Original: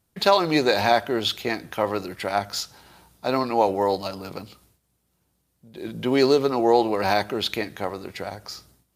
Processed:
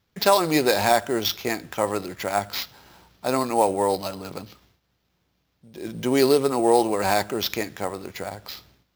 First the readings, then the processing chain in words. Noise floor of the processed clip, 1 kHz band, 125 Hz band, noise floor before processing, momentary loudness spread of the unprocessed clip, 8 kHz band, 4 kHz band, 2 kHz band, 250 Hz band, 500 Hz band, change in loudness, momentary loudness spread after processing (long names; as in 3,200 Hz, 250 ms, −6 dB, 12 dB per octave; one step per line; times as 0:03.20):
−72 dBFS, 0.0 dB, 0.0 dB, −72 dBFS, 17 LU, +7.0 dB, −1.0 dB, −0.5 dB, 0.0 dB, 0.0 dB, 0.0 dB, 17 LU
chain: sample-rate reduction 9,000 Hz, jitter 0%